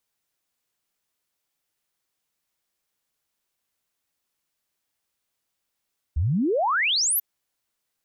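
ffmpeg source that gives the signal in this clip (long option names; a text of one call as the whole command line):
ffmpeg -f lavfi -i "aevalsrc='0.106*clip(min(t,1.04-t)/0.01,0,1)*sin(2*PI*67*1.04/log(14000/67)*(exp(log(14000/67)*t/1.04)-1))':duration=1.04:sample_rate=44100" out.wav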